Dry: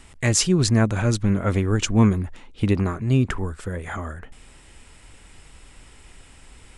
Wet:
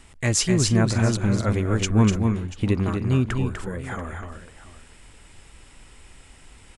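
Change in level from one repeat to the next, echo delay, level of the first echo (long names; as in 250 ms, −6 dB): repeats not evenly spaced, 248 ms, −5.5 dB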